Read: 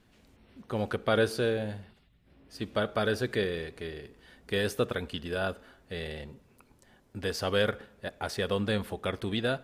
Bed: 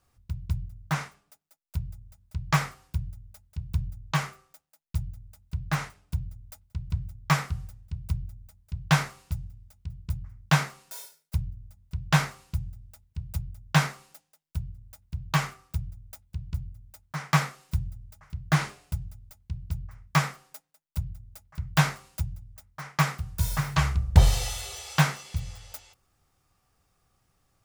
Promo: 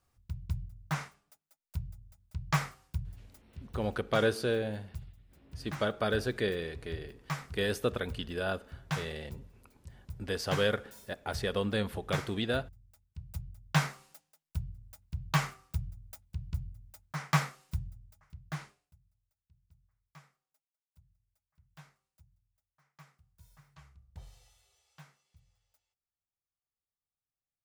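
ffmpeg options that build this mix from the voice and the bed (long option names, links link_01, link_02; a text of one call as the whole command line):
ffmpeg -i stem1.wav -i stem2.wav -filter_complex "[0:a]adelay=3050,volume=-2dB[link_01];[1:a]volume=4dB,afade=type=out:start_time=3.23:duration=0.41:silence=0.421697,afade=type=in:start_time=12.84:duration=1.42:silence=0.334965,afade=type=out:start_time=17.1:duration=1.83:silence=0.0334965[link_02];[link_01][link_02]amix=inputs=2:normalize=0" out.wav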